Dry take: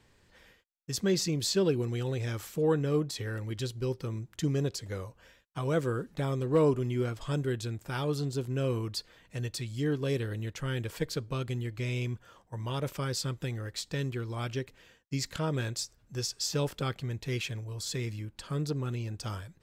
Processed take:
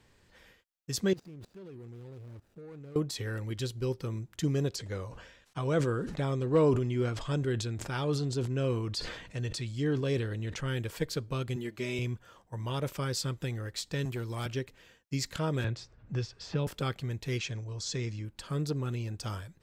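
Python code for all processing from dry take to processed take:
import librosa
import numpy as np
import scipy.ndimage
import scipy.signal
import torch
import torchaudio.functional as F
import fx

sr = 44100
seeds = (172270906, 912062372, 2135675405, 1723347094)

y = fx.chain(x, sr, fx.median_filter(points=41),
    fx.level_steps(step_db=23), at=(1.13, 2.96))
y = fx.chain(y, sr, fx.lowpass(hz=7900.0, slope=12),
    fx.sustainer(db_per_s=61.0), at=(4.76, 10.68))
y = fx.chain(y, sr, fx.highpass(hz=220.0, slope=6),
    fx.peak_eq(hz=310.0, db=5.5, octaves=0.65),
    fx.comb(ms=5.0, depth=0.56), at=(11.56, 11.99))
y = fx.chain(y, sr, fx.highpass(hz=71.0, slope=24),
    fx.high_shelf(hz=7700.0, db=10.5),
    fx.clip_hard(threshold_db=-29.0), at=(14.05, 14.46))
y = fx.chain(y, sr, fx.lowpass(hz=2600.0, slope=12),
    fx.peak_eq(hz=94.0, db=5.0, octaves=1.4),
    fx.band_squash(depth_pct=70), at=(15.64, 16.67))
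y = fx.chain(y, sr, fx.lowpass_res(hz=6300.0, q=2.6),
    fx.high_shelf(hz=3400.0, db=-7.5), at=(17.38, 18.25))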